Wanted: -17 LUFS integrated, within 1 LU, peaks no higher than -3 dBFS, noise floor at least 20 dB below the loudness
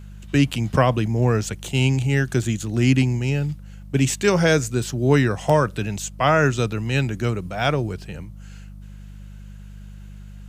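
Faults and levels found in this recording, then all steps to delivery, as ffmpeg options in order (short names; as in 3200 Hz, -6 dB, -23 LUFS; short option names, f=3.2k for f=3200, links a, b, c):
hum 50 Hz; harmonics up to 200 Hz; hum level -37 dBFS; loudness -21.0 LUFS; peak -5.5 dBFS; loudness target -17.0 LUFS
-> -af "bandreject=f=50:t=h:w=4,bandreject=f=100:t=h:w=4,bandreject=f=150:t=h:w=4,bandreject=f=200:t=h:w=4"
-af "volume=4dB,alimiter=limit=-3dB:level=0:latency=1"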